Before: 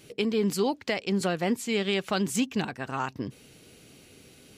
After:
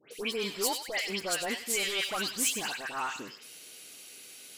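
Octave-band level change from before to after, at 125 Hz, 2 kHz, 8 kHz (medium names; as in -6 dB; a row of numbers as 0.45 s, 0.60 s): -16.0 dB, +0.5 dB, +6.5 dB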